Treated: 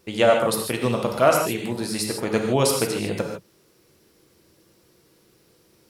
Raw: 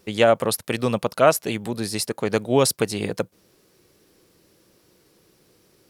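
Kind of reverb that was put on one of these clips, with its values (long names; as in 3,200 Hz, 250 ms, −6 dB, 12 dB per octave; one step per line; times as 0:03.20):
reverb whose tail is shaped and stops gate 180 ms flat, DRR 1 dB
level −2.5 dB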